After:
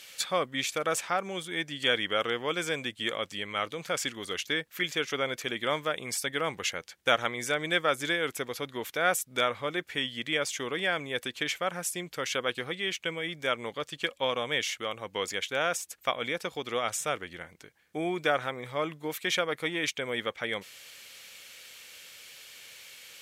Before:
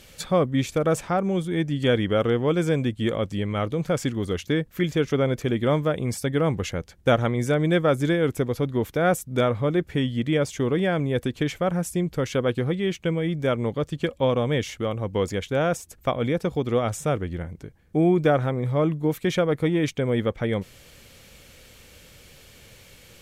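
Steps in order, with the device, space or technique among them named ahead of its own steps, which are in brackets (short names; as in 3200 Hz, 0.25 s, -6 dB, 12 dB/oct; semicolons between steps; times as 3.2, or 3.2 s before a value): filter by subtraction (in parallel: LPF 2500 Hz 12 dB/oct + phase invert); on the sum: gain +2 dB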